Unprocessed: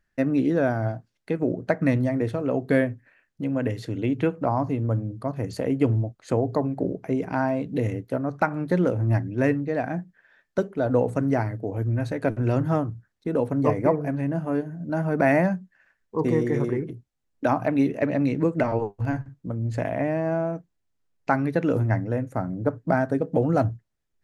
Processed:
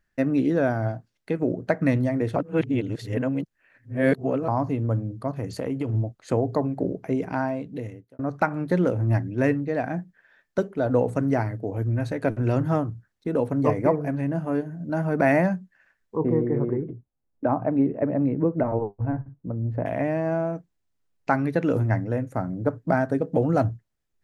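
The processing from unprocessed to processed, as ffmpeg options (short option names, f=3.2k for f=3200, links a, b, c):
-filter_complex "[0:a]asplit=3[a][b][c];[a]afade=t=out:st=5.38:d=0.02[d];[b]acompressor=threshold=-23dB:ratio=6:attack=3.2:release=140:knee=1:detection=peak,afade=t=in:st=5.38:d=0.02,afade=t=out:st=5.93:d=0.02[e];[c]afade=t=in:st=5.93:d=0.02[f];[d][e][f]amix=inputs=3:normalize=0,asettb=1/sr,asplit=3[g][h][i];[g]atrim=end=16.174[j];[h]atrim=start=16.17:end=19.86,asetpts=PTS-STARTPTS,afade=t=in:d=0.004:c=qsin,afade=t=out:st=3.686:d=0.004:c=qsin,lowpass=1k[k];[i]atrim=start=19.856[l];[j][k]acrossfade=d=0.004:c1=hsin:c2=qsin[m];[m][l]acrossfade=d=0.004:c1=qsin:c2=hsin,asplit=4[n][o][p][q];[n]atrim=end=2.362[r];[o]atrim=start=2.358:end=4.482,asetpts=PTS-STARTPTS,areverse[s];[p]atrim=start=4.478:end=8.19,asetpts=PTS-STARTPTS,afade=t=out:st=2.752:d=0.96[t];[q]atrim=start=8.19,asetpts=PTS-STARTPTS,afade=t=in:d=0.004:c=hsin[u];[r][s]acrossfade=d=0.004:c1=hsin:c2=hsin[v];[t][u]concat=n=2:v=0:a=1[w];[v][w]acrossfade=d=0.004:c1=hsin:c2=hsin"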